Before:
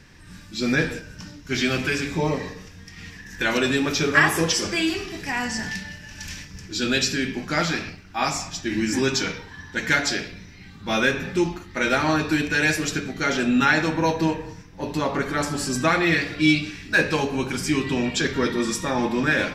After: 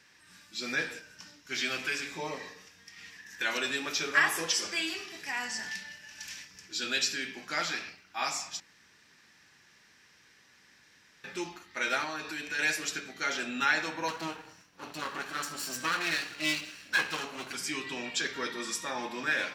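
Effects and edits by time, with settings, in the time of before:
8.6–11.24 room tone
12.04–12.59 compressor 2:1, threshold -25 dBFS
14.08–17.54 minimum comb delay 0.71 ms
whole clip: HPF 1100 Hz 6 dB/oct; gain -5.5 dB

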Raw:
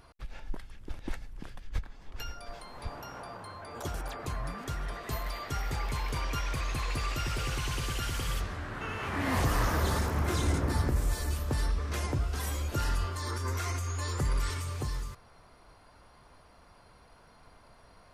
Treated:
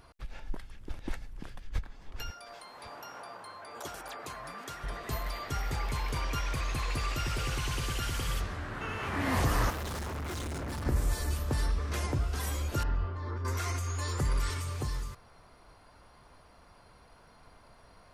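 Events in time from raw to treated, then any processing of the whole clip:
2.3–4.84 HPF 530 Hz 6 dB/oct
9.7–10.86 hard clip -35 dBFS
12.83–13.45 tape spacing loss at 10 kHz 41 dB

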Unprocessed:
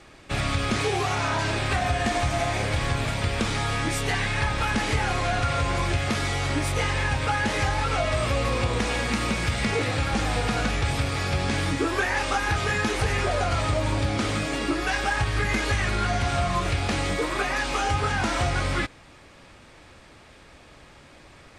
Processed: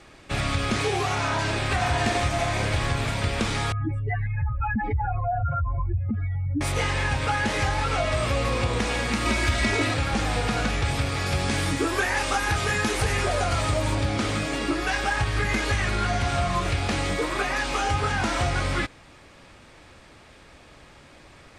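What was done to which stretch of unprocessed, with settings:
1.2–1.69 echo throw 0.59 s, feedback 50%, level -3.5 dB
3.72–6.61 spectral contrast raised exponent 3.7
9.25–9.94 comb 3.1 ms, depth 95%
11.26–13.95 high shelf 8800 Hz +10 dB

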